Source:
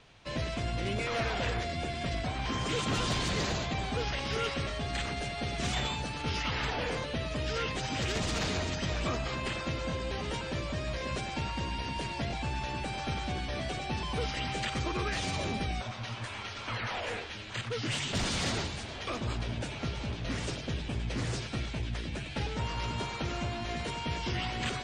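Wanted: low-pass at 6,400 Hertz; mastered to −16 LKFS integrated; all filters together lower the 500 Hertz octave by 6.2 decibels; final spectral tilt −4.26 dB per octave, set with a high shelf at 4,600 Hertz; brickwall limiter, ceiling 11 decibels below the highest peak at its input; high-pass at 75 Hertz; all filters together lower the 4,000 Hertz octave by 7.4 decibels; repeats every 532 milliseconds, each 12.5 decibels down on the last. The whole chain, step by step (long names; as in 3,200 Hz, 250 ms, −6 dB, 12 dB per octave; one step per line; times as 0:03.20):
high-pass filter 75 Hz
low-pass filter 6,400 Hz
parametric band 500 Hz −8 dB
parametric band 4,000 Hz −6.5 dB
high-shelf EQ 4,600 Hz −6 dB
brickwall limiter −33.5 dBFS
repeating echo 532 ms, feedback 24%, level −12.5 dB
level +25.5 dB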